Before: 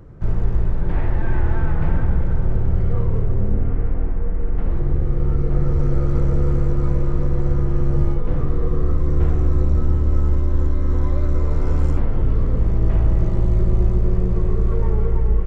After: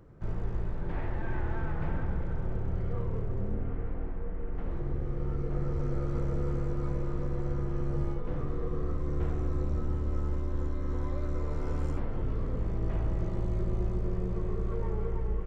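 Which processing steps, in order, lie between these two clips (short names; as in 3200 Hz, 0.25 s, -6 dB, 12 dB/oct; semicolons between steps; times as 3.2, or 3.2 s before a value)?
low shelf 150 Hz -7 dB; gain -8 dB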